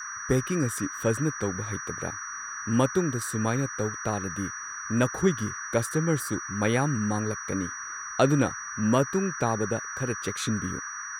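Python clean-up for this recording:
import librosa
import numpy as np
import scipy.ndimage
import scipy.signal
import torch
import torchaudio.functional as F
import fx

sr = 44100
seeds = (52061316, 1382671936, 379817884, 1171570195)

y = fx.notch(x, sr, hz=5800.0, q=30.0)
y = fx.noise_reduce(y, sr, print_start_s=7.69, print_end_s=8.19, reduce_db=30.0)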